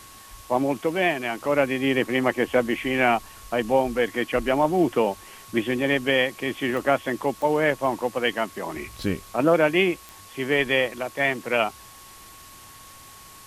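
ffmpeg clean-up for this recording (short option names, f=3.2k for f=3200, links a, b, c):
-af "adeclick=t=4,bandreject=f=1.1k:w=30,afwtdn=0.005"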